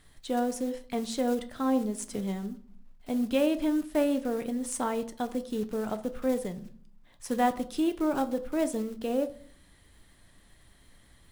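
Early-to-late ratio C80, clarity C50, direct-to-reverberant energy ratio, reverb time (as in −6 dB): 20.0 dB, 16.0 dB, 9.5 dB, 0.55 s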